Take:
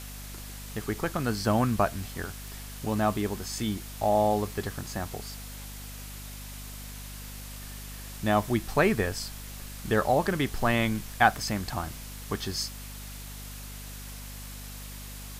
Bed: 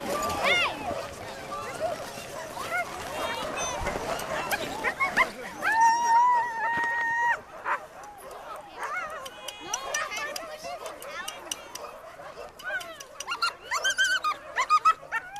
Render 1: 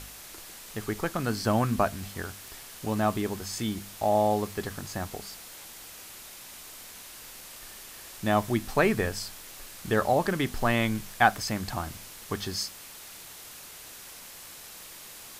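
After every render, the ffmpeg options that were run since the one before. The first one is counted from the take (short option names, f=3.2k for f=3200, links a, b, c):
-af "bandreject=f=50:t=h:w=4,bandreject=f=100:t=h:w=4,bandreject=f=150:t=h:w=4,bandreject=f=200:t=h:w=4,bandreject=f=250:t=h:w=4"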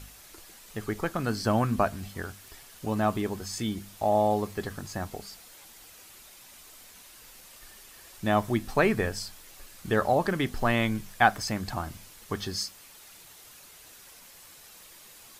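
-af "afftdn=nr=7:nf=-46"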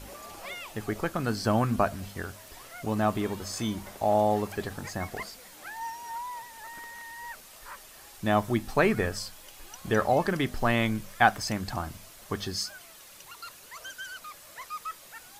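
-filter_complex "[1:a]volume=-16.5dB[a];[0:a][a]amix=inputs=2:normalize=0"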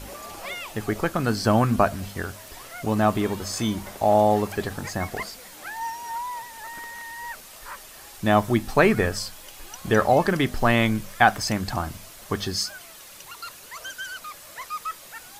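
-af "volume=5.5dB,alimiter=limit=-3dB:level=0:latency=1"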